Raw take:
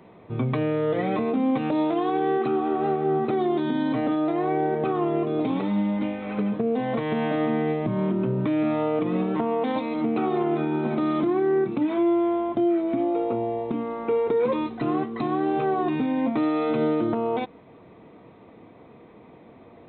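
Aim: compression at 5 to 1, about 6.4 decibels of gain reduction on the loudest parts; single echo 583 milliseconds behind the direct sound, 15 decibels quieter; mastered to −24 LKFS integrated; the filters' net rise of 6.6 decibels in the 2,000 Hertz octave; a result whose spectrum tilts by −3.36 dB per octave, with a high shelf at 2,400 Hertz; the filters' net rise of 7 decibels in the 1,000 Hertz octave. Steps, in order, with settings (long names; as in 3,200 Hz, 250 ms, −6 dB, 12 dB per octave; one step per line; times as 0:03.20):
parametric band 1,000 Hz +8.5 dB
parametric band 2,000 Hz +3.5 dB
high-shelf EQ 2,400 Hz +4 dB
downward compressor 5 to 1, threshold −24 dBFS
single-tap delay 583 ms −15 dB
level +3.5 dB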